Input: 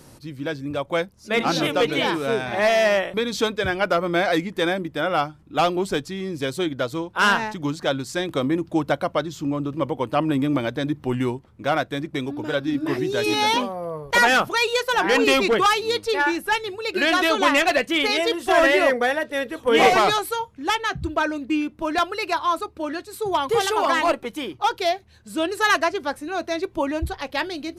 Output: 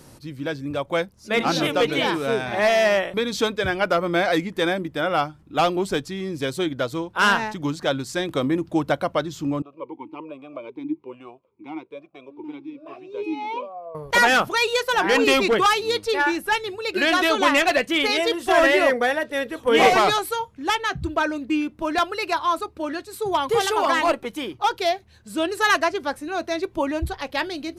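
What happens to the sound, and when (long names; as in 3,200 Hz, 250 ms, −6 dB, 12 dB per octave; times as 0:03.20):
0:09.62–0:13.95: formant filter swept between two vowels a-u 1.2 Hz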